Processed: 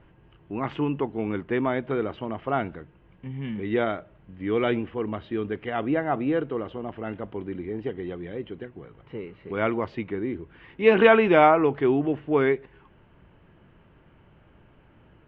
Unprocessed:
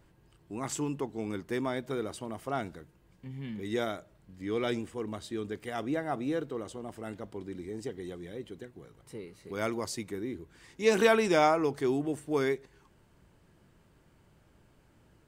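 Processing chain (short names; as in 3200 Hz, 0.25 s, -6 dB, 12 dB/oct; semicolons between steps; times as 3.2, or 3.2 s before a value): elliptic low-pass 3000 Hz, stop band 80 dB; gain +8 dB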